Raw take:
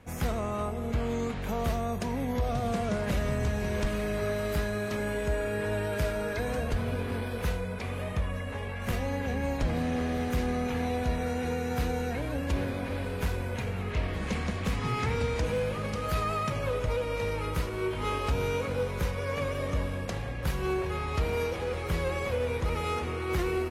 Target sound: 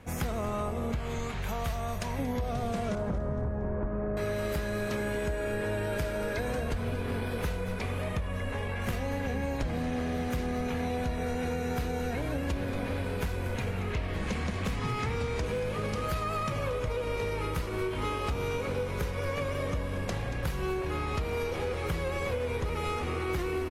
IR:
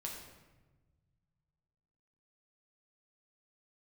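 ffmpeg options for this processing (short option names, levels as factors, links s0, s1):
-filter_complex "[0:a]asettb=1/sr,asplit=3[s0][s1][s2];[s0]atrim=end=0.954[s3];[s1]atrim=start=0.95:end=2.19,asetpts=PTS-STARTPTS,afade=t=in:d=0.004:c=qsin,afade=t=out:st=1.236:d=0.004:c=qsin,equalizer=f=310:w=0.95:g=-13[s4];[s2]atrim=start=2.186[s5];[s3][s4]acrossfade=d=0.004:c1=hsin:c2=qsin[s6];[s6][s5]acrossfade=d=0.004:c1=qsin:c2=hsin,asettb=1/sr,asplit=3[s7][s8][s9];[s7]atrim=end=2.954[s10];[s8]atrim=start=2.95:end=4.17,asetpts=PTS-STARTPTS,afade=t=in:d=0.004:c=qsin,afade=t=out:st=1.216:d=0.004:c=qsin,lowpass=f=1300:w=0.5412,lowpass=f=1300:w=1.3066[s11];[s9]atrim=start=4.166[s12];[s10][s11]acrossfade=d=0.004:c1=hsin:c2=qsin[s13];[s13][s12]acrossfade=d=0.004:c1=qsin:c2=hsin,asplit=5[s14][s15][s16][s17][s18];[s15]adelay=231,afreqshift=-75,volume=0.237[s19];[s16]adelay=462,afreqshift=-150,volume=0.0881[s20];[s17]adelay=693,afreqshift=-225,volume=0.0324[s21];[s18]adelay=924,afreqshift=-300,volume=0.012[s22];[s14][s19][s20][s21][s22]amix=inputs=5:normalize=0,acompressor=threshold=0.0282:ratio=6,volume=1.41"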